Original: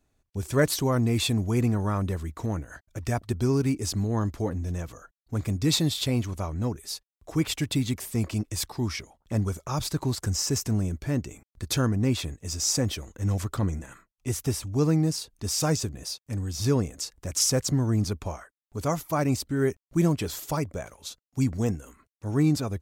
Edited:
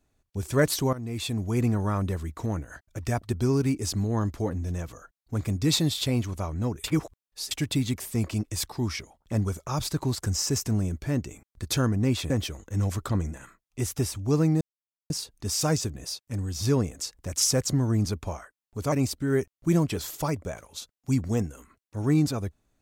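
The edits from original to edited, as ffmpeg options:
-filter_complex "[0:a]asplit=7[a][b][c][d][e][f][g];[a]atrim=end=0.93,asetpts=PTS-STARTPTS,afade=t=out:st=0.926:d=0.004:c=hsin:silence=0.16788[h];[b]atrim=start=0.93:end=6.842,asetpts=PTS-STARTPTS,afade=t=in:d=0.75:silence=0.16788[i];[c]atrim=start=6.838:end=7.512,asetpts=PTS-STARTPTS,areverse[j];[d]atrim=start=7.508:end=12.302[k];[e]atrim=start=12.778:end=15.09,asetpts=PTS-STARTPTS,afade=t=out:st=2.308:d=0.004:c=hsin,apad=pad_dur=0.49[l];[f]atrim=start=15.09:end=18.912,asetpts=PTS-STARTPTS,afade=t=in:d=0.004:c=hsin[m];[g]atrim=start=19.208[n];[h][i]concat=n=2:v=0:a=1[o];[o][j]acrossfade=d=0.004:c1=hsin:c2=hsin[p];[p][k]acrossfade=d=0.004:c1=hsin:c2=hsin[q];[l][m]concat=n=2:v=0:a=1[r];[q][r]acrossfade=d=0.004:c1=hsin:c2=hsin[s];[s][n]acrossfade=d=0.004:c1=hsin:c2=hsin"

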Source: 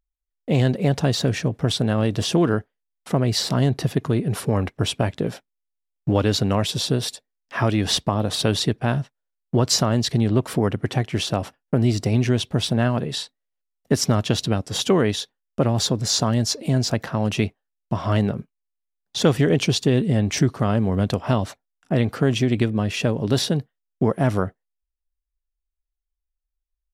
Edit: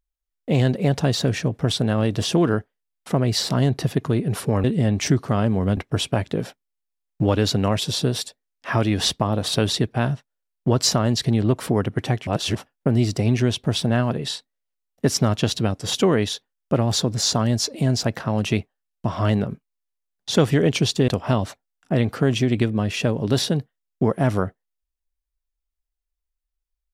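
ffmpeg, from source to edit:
-filter_complex "[0:a]asplit=6[a][b][c][d][e][f];[a]atrim=end=4.642[g];[b]atrim=start=19.948:end=21.082[h];[c]atrim=start=4.638:end=11.142[i];[d]atrim=start=11.138:end=11.422,asetpts=PTS-STARTPTS,areverse[j];[e]atrim=start=11.418:end=19.952[k];[f]atrim=start=21.078[l];[g][h]acrossfade=d=0.004:c1=hsin:c2=hsin[m];[m][i]acrossfade=d=0.004:c1=hsin:c2=hsin[n];[n][j]acrossfade=d=0.004:c1=hsin:c2=hsin[o];[o][k]acrossfade=d=0.004:c1=hsin:c2=hsin[p];[p][l]acrossfade=d=0.004:c1=hsin:c2=hsin"

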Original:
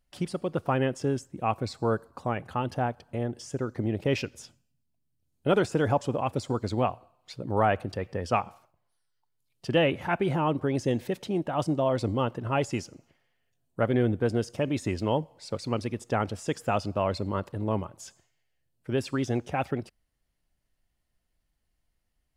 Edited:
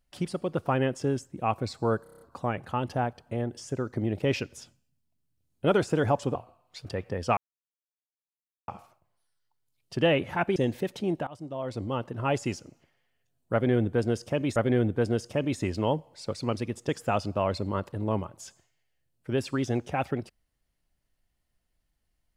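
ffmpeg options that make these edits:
-filter_complex "[0:a]asplit=14[a][b][c][d][e][f][g][h][i][j][k][l][m][n];[a]atrim=end=2.062[o];[b]atrim=start=2.028:end=2.062[p];[c]atrim=start=2.028:end=2.062[q];[d]atrim=start=2.028:end=2.062[r];[e]atrim=start=2.028:end=2.062[s];[f]atrim=start=2.028:end=2.062[t];[g]atrim=start=2.028:end=6.172[u];[h]atrim=start=6.888:end=7.392[v];[i]atrim=start=7.878:end=8.4,asetpts=PTS-STARTPTS,afade=t=out:st=0.518:d=0.004:c=hsin,apad=pad_dur=1.31[w];[j]atrim=start=8.4:end=10.282,asetpts=PTS-STARTPTS,afade=t=in:d=0.004:c=hsin[x];[k]atrim=start=10.828:end=11.54,asetpts=PTS-STARTPTS,afade=t=out:st=0.708:d=0.004:c=hsin:silence=0.0891251[y];[l]atrim=start=11.54:end=14.832,asetpts=PTS-STARTPTS,afade=t=in:d=1.08:silence=0.0891251[z];[m]atrim=start=13.798:end=16.132[aa];[n]atrim=start=16.488[ab];[o][p]acrossfade=d=0.004:c1=hsin:c2=hsin[ac];[ac][q]acrossfade=d=0.004:c1=hsin:c2=hsin[ad];[ad][r]acrossfade=d=0.004:c1=hsin:c2=hsin[ae];[ae][s]acrossfade=d=0.004:c1=hsin:c2=hsin[af];[af][t]acrossfade=d=0.004:c1=hsin:c2=hsin[ag];[ag][u]acrossfade=d=0.004:c1=hsin:c2=hsin[ah];[ah][v]acrossfade=d=0.004:c1=hsin:c2=hsin[ai];[w][x]concat=n=2:v=0:a=1[aj];[ai][aj]acrossfade=d=0.004:c1=hsin:c2=hsin[ak];[y][z]concat=n=2:v=0:a=1[al];[ak][al]acrossfade=d=0.004:c1=hsin:c2=hsin[am];[am][aa]acrossfade=d=0.004:c1=hsin:c2=hsin[an];[an][ab]acrossfade=d=0.004:c1=hsin:c2=hsin"

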